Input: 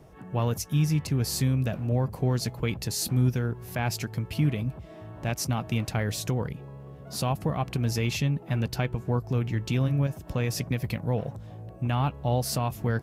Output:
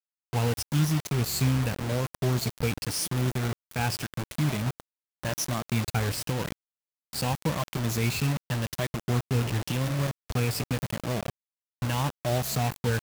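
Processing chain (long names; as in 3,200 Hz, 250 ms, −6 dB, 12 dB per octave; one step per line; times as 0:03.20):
rippled gain that drifts along the octave scale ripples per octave 1.2, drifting +0.89 Hz, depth 12 dB
hum removal 269 Hz, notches 20
bit reduction 5 bits
level −2.5 dB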